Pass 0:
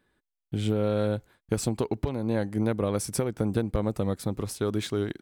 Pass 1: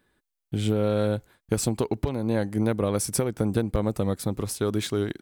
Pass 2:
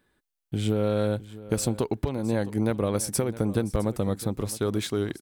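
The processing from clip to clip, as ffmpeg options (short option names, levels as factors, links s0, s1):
-af "highshelf=f=6800:g=5,volume=1.26"
-af "aecho=1:1:661:0.141,volume=0.891"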